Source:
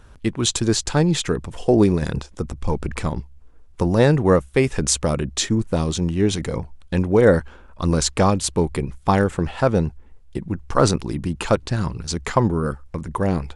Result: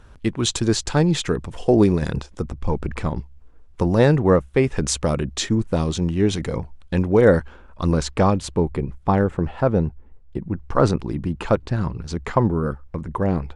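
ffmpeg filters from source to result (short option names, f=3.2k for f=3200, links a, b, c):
-af "asetnsamples=n=441:p=0,asendcmd='2.44 lowpass f 2600;3.16 lowpass f 4700;4.19 lowpass f 2200;4.77 lowpass f 5000;7.92 lowpass f 2200;8.57 lowpass f 1100;10.52 lowpass f 1700',lowpass=f=6.3k:p=1"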